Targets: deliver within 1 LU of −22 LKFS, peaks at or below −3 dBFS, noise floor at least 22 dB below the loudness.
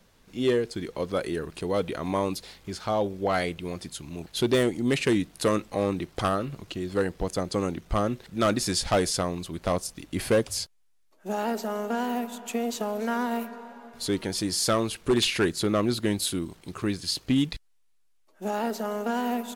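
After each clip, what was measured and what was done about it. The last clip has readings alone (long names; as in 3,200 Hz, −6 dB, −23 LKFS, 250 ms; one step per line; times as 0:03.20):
share of clipped samples 0.7%; peaks flattened at −16.5 dBFS; number of dropouts 1; longest dropout 2.0 ms; integrated loudness −28.0 LKFS; sample peak −16.5 dBFS; target loudness −22.0 LKFS
→ clipped peaks rebuilt −16.5 dBFS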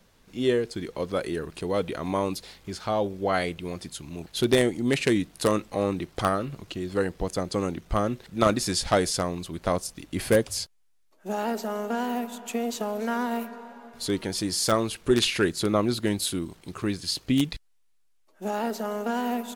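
share of clipped samples 0.0%; number of dropouts 1; longest dropout 2.0 ms
→ repair the gap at 0:14.79, 2 ms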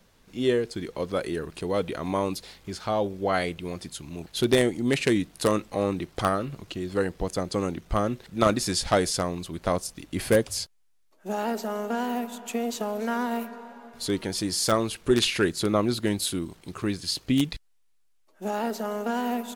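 number of dropouts 0; integrated loudness −27.5 LKFS; sample peak −7.5 dBFS; target loudness −22.0 LKFS
→ level +5.5 dB
brickwall limiter −3 dBFS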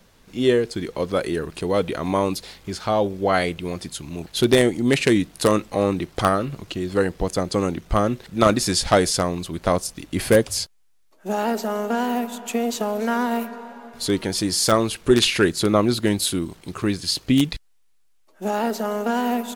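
integrated loudness −22.0 LKFS; sample peak −3.0 dBFS; background noise floor −57 dBFS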